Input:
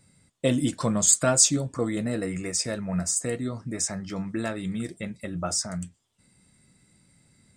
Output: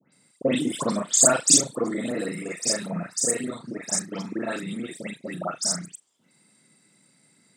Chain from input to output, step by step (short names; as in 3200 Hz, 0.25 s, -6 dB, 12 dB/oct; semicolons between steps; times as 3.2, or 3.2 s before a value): local time reversal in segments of 34 ms; Bessel high-pass 240 Hz, order 8; dispersion highs, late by 0.128 s, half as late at 2300 Hz; gain +3 dB